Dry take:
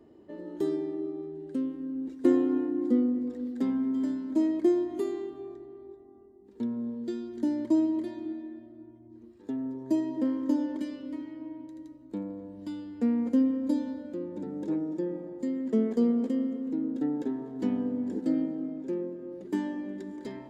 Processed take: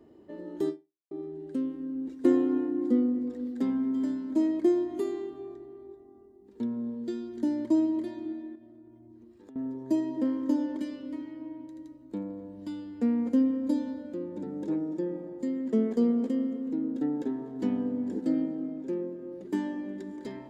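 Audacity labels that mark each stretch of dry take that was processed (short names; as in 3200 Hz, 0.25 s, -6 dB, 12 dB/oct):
0.690000	1.110000	fade out exponential
8.550000	9.560000	compressor, threshold -48 dBFS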